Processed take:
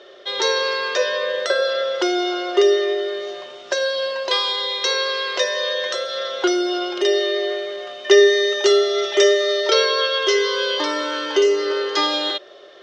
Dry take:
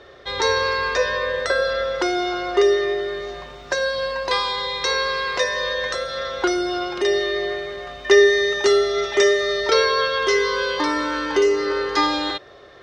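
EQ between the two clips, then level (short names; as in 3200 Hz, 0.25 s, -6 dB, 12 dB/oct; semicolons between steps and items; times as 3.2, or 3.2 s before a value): speaker cabinet 270–7300 Hz, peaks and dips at 370 Hz +9 dB, 600 Hz +10 dB, 1400 Hz +3 dB, 3100 Hz +10 dB; high shelf 4400 Hz +12 dB; -5.0 dB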